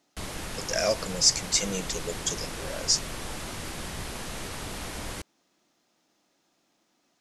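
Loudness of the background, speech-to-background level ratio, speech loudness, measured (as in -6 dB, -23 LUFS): -36.0 LUFS, 9.5 dB, -26.5 LUFS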